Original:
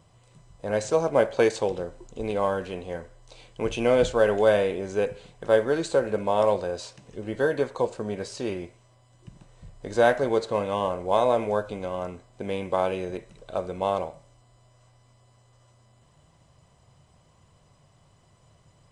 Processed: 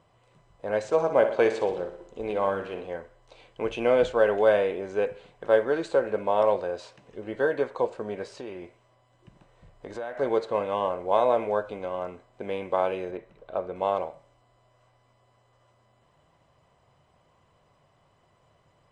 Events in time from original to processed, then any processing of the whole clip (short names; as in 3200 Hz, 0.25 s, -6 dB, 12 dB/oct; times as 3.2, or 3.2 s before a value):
0.86–2.87 feedback echo 61 ms, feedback 55%, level -10 dB
8.35–10.19 compressor, threshold -31 dBFS
13.11–13.76 high shelf 3700 Hz -11 dB
whole clip: tone controls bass -9 dB, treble -13 dB